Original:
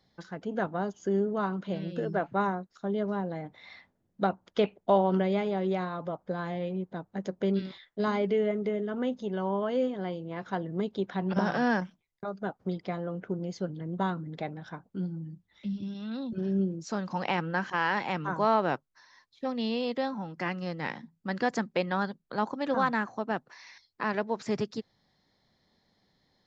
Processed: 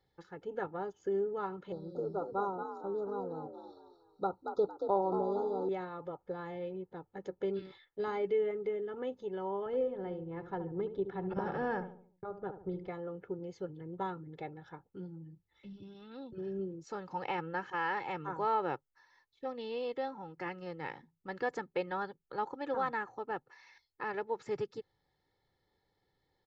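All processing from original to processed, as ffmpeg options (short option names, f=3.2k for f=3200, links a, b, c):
-filter_complex "[0:a]asettb=1/sr,asplit=3[a][b][c];[a]atrim=end=1.724[d];[b]atrim=start=1.72:end=5.69,asetpts=PTS-STARTPTS,afade=t=in:d=0.004:c=qsin,afade=t=out:st=3.966:d=0.004:c=qsin,asuperstop=centerf=2300:order=20:qfactor=1,asplit=5[e][f][g][h][i];[f]adelay=228,afreqshift=56,volume=-7dB[j];[g]adelay=456,afreqshift=112,volume=-16.6dB[k];[h]adelay=684,afreqshift=168,volume=-26.3dB[l];[i]adelay=912,afreqshift=224,volume=-35.9dB[m];[e][j][k][l][m]amix=inputs=5:normalize=0,atrim=end_sample=175077[n];[c]atrim=start=5.686[o];[d][n]acrossfade=d=0.004:c1=hsin:c2=qsin[p];[p][o]acrossfade=d=0.004:c1=qsin:c2=hsin,asettb=1/sr,asplit=3[q][r][s];[q]atrim=end=9.664[t];[r]atrim=start=9.66:end=12.88,asetpts=PTS-STARTPTS,afade=t=in:d=0.004:c=qsin,afade=t=out:st=3.216:d=0.004:c=qsin,lowpass=f=1.9k:p=1,lowshelf=f=130:g=11.5,asplit=2[u][v];[v]adelay=72,lowpass=f=1k:p=1,volume=-9dB,asplit=2[w][x];[x]adelay=72,lowpass=f=1k:p=1,volume=0.48,asplit=2[y][z];[z]adelay=72,lowpass=f=1k:p=1,volume=0.48,asplit=2[aa][ab];[ab]adelay=72,lowpass=f=1k:p=1,volume=0.48,asplit=2[ac][ad];[ad]adelay=72,lowpass=f=1k:p=1,volume=0.48[ae];[u][w][y][aa][ac][ae]amix=inputs=6:normalize=0,atrim=end_sample=142002[af];[s]atrim=start=12.876[ag];[t][af]acrossfade=d=0.004:c1=hsin:c2=qsin[ah];[ah][ag]acrossfade=d=0.004:c1=qsin:c2=hsin,equalizer=f=5.5k:t=o:w=1.6:g=-8.5,aecho=1:1:2.3:0.7,volume=-7.5dB"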